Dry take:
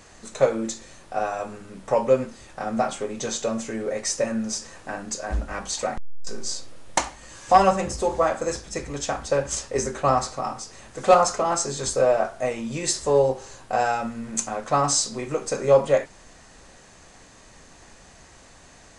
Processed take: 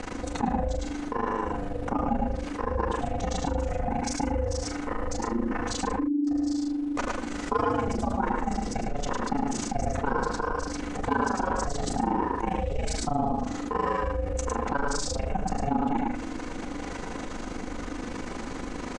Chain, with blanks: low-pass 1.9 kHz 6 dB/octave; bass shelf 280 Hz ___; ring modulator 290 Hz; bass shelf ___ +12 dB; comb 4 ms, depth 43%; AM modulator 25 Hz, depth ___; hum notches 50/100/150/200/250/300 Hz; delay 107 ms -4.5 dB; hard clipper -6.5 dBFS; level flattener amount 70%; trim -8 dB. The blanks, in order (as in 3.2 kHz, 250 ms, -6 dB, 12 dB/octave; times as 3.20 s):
+2 dB, 64 Hz, 90%